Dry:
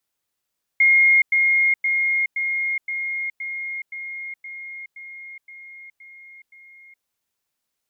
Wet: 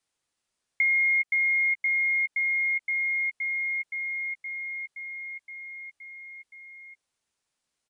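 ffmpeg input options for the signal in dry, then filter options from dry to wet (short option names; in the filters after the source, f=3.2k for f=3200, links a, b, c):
-f lavfi -i "aevalsrc='pow(10,(-11.5-3*floor(t/0.52))/20)*sin(2*PI*2140*t)*clip(min(mod(t,0.52),0.42-mod(t,0.52))/0.005,0,1)':d=6.24:s=44100"
-filter_complex "[0:a]acompressor=threshold=-26dB:ratio=3,aresample=22050,aresample=44100,asplit=2[a][b];[b]adelay=13,volume=-11.5dB[c];[a][c]amix=inputs=2:normalize=0"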